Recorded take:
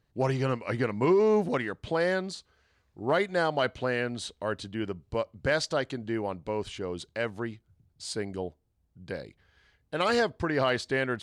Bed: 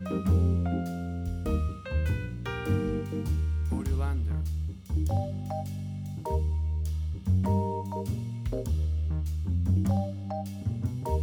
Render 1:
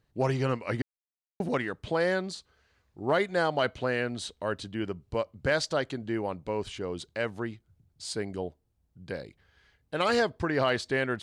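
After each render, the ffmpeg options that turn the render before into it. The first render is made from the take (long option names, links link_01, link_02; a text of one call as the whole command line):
ffmpeg -i in.wav -filter_complex "[0:a]asplit=3[link_01][link_02][link_03];[link_01]atrim=end=0.82,asetpts=PTS-STARTPTS,afade=type=out:start_time=0.816:duration=0.004:curve=hsin[link_04];[link_02]atrim=start=0.82:end=1.4,asetpts=PTS-STARTPTS,volume=0[link_05];[link_03]atrim=start=1.4,asetpts=PTS-STARTPTS,afade=type=in:duration=0.004:curve=hsin[link_06];[link_04][link_05][link_06]concat=n=3:v=0:a=1" out.wav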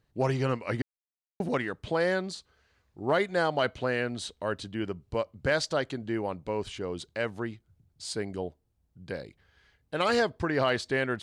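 ffmpeg -i in.wav -af anull out.wav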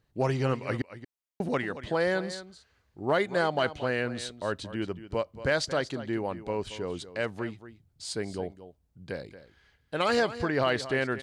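ffmpeg -i in.wav -af "aecho=1:1:228:0.2" out.wav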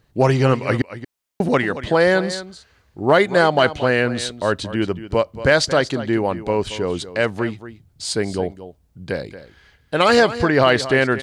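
ffmpeg -i in.wav -af "volume=11.5dB" out.wav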